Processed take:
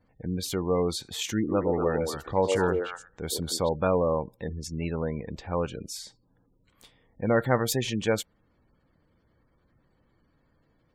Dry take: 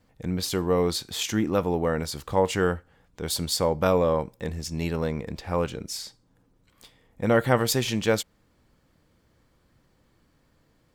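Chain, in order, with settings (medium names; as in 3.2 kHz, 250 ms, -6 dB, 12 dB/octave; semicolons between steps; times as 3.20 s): spectral gate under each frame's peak -25 dB strong; peaking EQ 4.9 kHz -4.5 dB 0.23 oct; 1.37–3.69 s: repeats whose band climbs or falls 120 ms, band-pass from 420 Hz, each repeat 1.4 oct, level -0.5 dB; trim -2.5 dB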